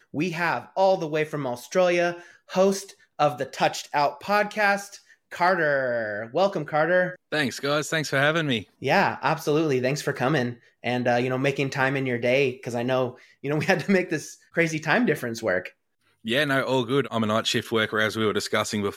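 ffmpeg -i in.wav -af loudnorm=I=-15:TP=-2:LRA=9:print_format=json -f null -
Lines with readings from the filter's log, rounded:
"input_i" : "-24.3",
"input_tp" : "-5.4",
"input_lra" : "1.2",
"input_thresh" : "-34.5",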